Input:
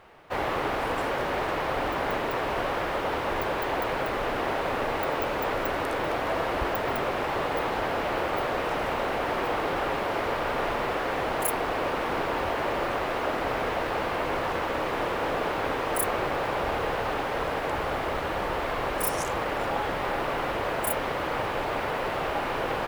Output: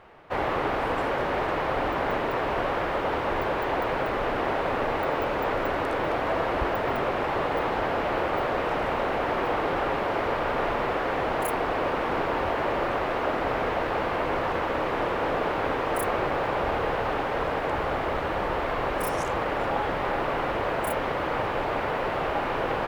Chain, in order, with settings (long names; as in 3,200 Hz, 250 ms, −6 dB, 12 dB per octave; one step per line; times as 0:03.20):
high-shelf EQ 4,700 Hz −11.5 dB
level +2 dB